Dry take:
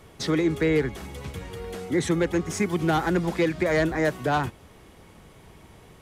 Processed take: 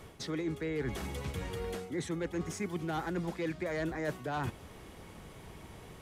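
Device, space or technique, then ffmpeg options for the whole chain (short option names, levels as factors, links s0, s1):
compression on the reversed sound: -af "areverse,acompressor=threshold=0.0224:ratio=6,areverse"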